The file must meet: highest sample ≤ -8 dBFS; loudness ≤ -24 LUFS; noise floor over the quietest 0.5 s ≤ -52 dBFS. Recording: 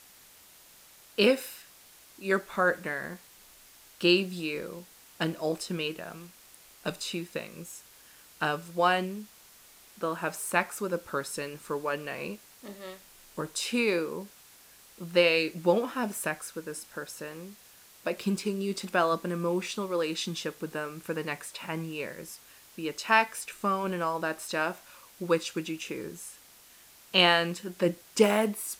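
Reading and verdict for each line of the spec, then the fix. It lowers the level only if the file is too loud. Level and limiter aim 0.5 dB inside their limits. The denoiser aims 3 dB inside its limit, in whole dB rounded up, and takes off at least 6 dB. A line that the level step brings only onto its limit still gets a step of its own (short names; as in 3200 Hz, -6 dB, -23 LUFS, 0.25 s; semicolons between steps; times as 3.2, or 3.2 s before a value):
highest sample -7.0 dBFS: fail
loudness -29.5 LUFS: OK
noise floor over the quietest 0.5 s -55 dBFS: OK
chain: limiter -8.5 dBFS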